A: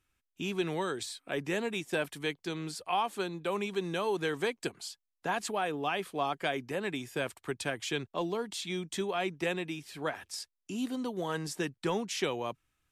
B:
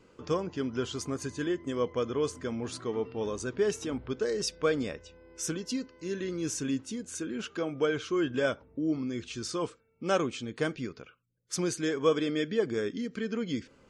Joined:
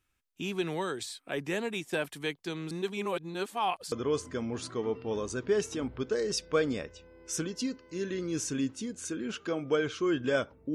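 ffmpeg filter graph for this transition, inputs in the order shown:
-filter_complex "[0:a]apad=whole_dur=10.74,atrim=end=10.74,asplit=2[a][b];[a]atrim=end=2.712[c];[b]atrim=start=2.708:end=3.922,asetpts=PTS-STARTPTS,areverse[d];[1:a]atrim=start=2.018:end=8.84[e];[c][d]acrossfade=d=0.004:c1=hsin:c2=hsin[f];[f][e]acrossfade=d=0.004:c1=hsin:c2=hsin"

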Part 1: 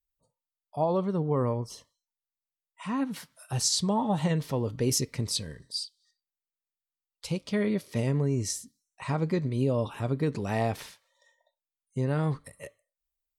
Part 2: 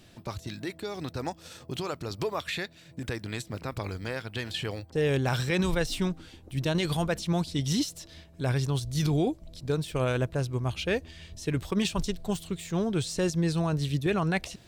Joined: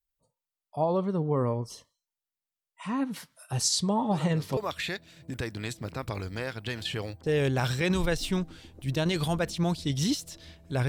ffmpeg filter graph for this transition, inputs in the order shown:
-filter_complex "[1:a]asplit=2[a][b];[0:a]apad=whole_dur=10.88,atrim=end=10.88,atrim=end=4.572[c];[b]atrim=start=2.258:end=8.57[d];[a]atrim=start=1.8:end=2.26,asetpts=PTS-STARTPTS,volume=-9dB,afade=t=in:d=0.004:c=hsin,afade=t=out:st=0.456:d=0.004:c=hsin,adelay=4110[e];[c][d]acrossfade=d=0.004:c1=hsin:c2=hsin[f];[f][e]amix=inputs=2:normalize=0"

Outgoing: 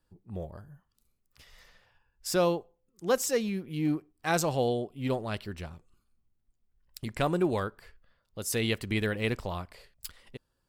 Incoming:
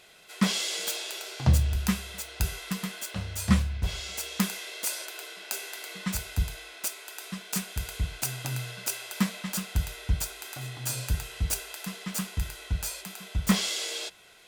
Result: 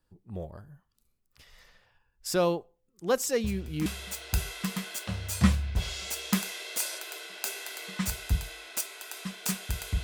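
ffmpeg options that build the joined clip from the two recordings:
-filter_complex "[1:a]asplit=2[a][b];[0:a]apad=whole_dur=10.03,atrim=end=10.03,atrim=end=3.862[c];[b]atrim=start=1.928:end=8.1[d];[a]atrim=start=1.51:end=1.93,asetpts=PTS-STARTPTS,volume=-13.5dB,afade=t=in:d=0.004:c=hsin,afade=t=out:st=0.416:d=0.004:c=hsin,adelay=3440[e];[c][d]acrossfade=d=0.004:c1=hsin:c2=hsin[f];[f][e]amix=inputs=2:normalize=0"

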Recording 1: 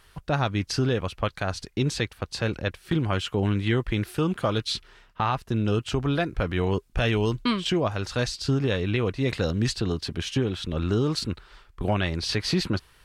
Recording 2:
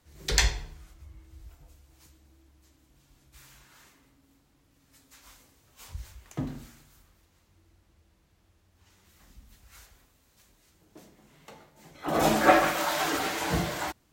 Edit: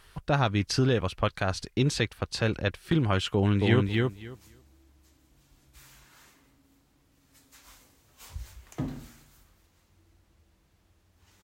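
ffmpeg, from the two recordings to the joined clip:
-filter_complex "[0:a]apad=whole_dur=11.43,atrim=end=11.43,atrim=end=3.852[a];[1:a]atrim=start=1.438:end=9.02[b];[a][b]acrossfade=d=0.004:c1=hsin:c2=hsin,asplit=2[c][d];[d]afade=t=in:st=3.34:d=0.01,afade=t=out:st=3.85:d=0.01,aecho=0:1:270|540|810:0.749894|0.112484|0.0168726[e];[c][e]amix=inputs=2:normalize=0"

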